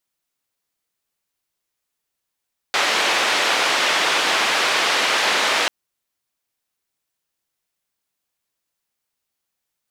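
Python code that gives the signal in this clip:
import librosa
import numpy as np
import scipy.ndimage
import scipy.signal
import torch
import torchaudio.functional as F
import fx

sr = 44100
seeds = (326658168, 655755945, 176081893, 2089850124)

y = fx.band_noise(sr, seeds[0], length_s=2.94, low_hz=440.0, high_hz=3200.0, level_db=-19.0)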